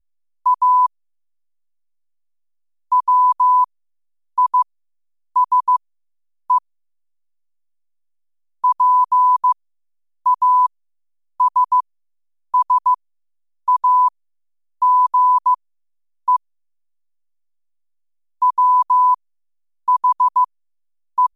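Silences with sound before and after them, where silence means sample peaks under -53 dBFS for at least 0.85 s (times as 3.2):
0.87–2.92
6.59–8.64
16.37–18.42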